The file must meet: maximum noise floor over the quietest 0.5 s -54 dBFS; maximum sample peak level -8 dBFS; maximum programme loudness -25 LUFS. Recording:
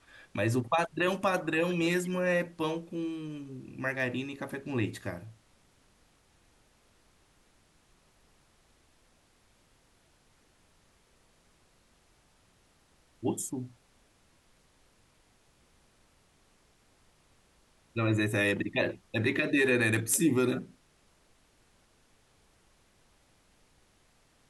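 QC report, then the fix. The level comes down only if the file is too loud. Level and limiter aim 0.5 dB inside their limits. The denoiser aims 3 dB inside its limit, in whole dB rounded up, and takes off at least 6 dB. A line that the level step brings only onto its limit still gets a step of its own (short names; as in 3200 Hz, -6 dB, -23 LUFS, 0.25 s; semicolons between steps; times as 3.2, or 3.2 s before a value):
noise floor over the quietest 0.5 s -66 dBFS: OK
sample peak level -14.5 dBFS: OK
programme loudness -30.5 LUFS: OK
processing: none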